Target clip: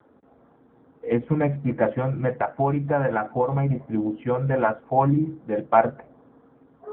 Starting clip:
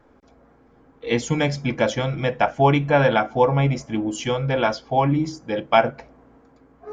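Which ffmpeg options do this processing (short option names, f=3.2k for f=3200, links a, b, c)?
-filter_complex "[0:a]lowpass=f=1.8k:w=0.5412,lowpass=f=1.8k:w=1.3066,asettb=1/sr,asplit=3[a][b][c];[a]atrim=end=2.314[d];[b]atrim=start=2.31:end=3.7,asetpts=PTS-STARTPTS,afade=t=in:d=0.004:c=qsin,afade=t=out:st=1.386:d=0.004:c=qsin,acompressor=threshold=-20dB:ratio=2.5[e];[c]atrim=start=3.696[f];[d][e]acrossfade=d=0.004:c1=hsin:c2=qsin[g];[g][f]acrossfade=d=0.004:c1=qsin:c2=hsin" -ar 8000 -c:a libopencore_amrnb -b:a 7400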